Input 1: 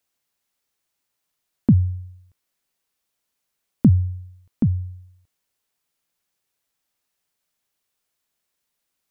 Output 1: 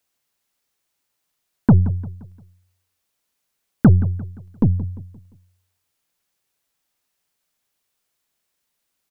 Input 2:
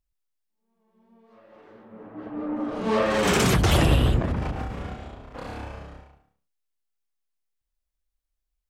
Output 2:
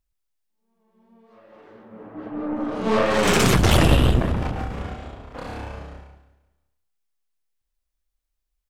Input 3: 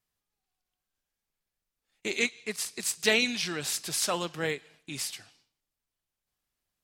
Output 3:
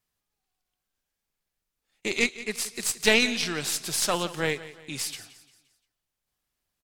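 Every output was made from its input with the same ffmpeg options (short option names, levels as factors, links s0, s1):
-filter_complex "[0:a]aeval=exprs='0.562*(cos(1*acos(clip(val(0)/0.562,-1,1)))-cos(1*PI/2))+0.0447*(cos(4*acos(clip(val(0)/0.562,-1,1)))-cos(4*PI/2))+0.0794*(cos(6*acos(clip(val(0)/0.562,-1,1)))-cos(6*PI/2))':c=same,asplit=2[s0][s1];[s1]aecho=0:1:174|348|522|696:0.15|0.0628|0.0264|0.0111[s2];[s0][s2]amix=inputs=2:normalize=0,volume=1.33"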